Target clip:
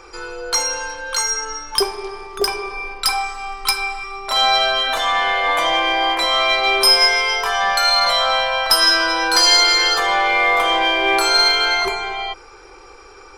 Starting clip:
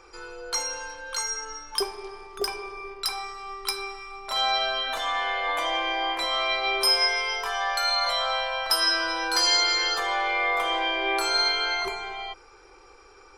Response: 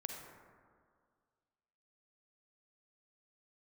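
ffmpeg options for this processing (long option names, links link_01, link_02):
-filter_complex "[0:a]asettb=1/sr,asplit=3[link_01][link_02][link_03];[link_01]atrim=end=2.704[link_04];[link_02]atrim=start=2.7:end=4.04,asetpts=PTS-STARTPTS,afade=type=in:duration=0.004:curve=qsin,afade=type=out:start_time=1.336:duration=0.004:curve=qsin,aecho=1:1:3.9:0.73,atrim=end_sample=59094[link_05];[link_03]atrim=start=4.036[link_06];[link_04][link_05]acrossfade=duration=0.004:curve1=hsin:curve2=qsin[link_07];[link_07][link_06]acrossfade=duration=0.004:curve1=qsin:curve2=hsin,asplit=2[link_08][link_09];[link_09]aeval=exprs='clip(val(0),-1,0.0422)':channel_layout=same,volume=-7dB[link_10];[link_08][link_10]amix=inputs=2:normalize=0,volume=6.5dB"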